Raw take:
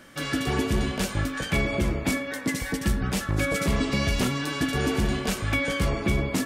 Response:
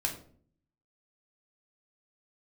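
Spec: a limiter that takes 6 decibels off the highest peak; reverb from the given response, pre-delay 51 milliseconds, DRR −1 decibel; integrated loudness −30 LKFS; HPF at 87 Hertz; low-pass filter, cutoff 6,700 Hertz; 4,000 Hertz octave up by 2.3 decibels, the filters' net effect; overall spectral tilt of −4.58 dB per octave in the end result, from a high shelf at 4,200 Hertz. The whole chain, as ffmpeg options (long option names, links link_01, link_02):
-filter_complex "[0:a]highpass=87,lowpass=6700,equalizer=frequency=4000:width_type=o:gain=6,highshelf=frequency=4200:gain=-4.5,alimiter=limit=-18.5dB:level=0:latency=1,asplit=2[link_01][link_02];[1:a]atrim=start_sample=2205,adelay=51[link_03];[link_02][link_03]afir=irnorm=-1:irlink=0,volume=-3dB[link_04];[link_01][link_04]amix=inputs=2:normalize=0,volume=-5.5dB"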